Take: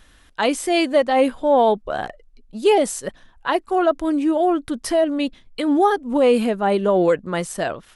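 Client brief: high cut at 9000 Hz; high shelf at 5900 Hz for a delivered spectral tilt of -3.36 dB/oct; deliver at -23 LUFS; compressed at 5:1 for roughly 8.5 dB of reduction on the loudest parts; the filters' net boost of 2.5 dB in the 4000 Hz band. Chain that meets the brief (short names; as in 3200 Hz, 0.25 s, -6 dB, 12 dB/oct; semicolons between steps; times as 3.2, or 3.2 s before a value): LPF 9000 Hz; bell 4000 Hz +5.5 dB; high shelf 5900 Hz -5.5 dB; compressor 5:1, threshold -21 dBFS; gain +3 dB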